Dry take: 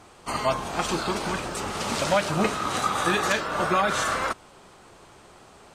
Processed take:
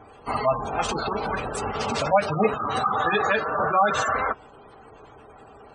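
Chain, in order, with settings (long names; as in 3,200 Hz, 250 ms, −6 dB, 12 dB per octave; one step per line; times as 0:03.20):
gate on every frequency bin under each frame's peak −15 dB strong
dynamic equaliser 310 Hz, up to −6 dB, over −41 dBFS, Q 2.3
notch comb filter 180 Hz
hollow resonant body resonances 440/760/2,700 Hz, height 6 dB
level +3.5 dB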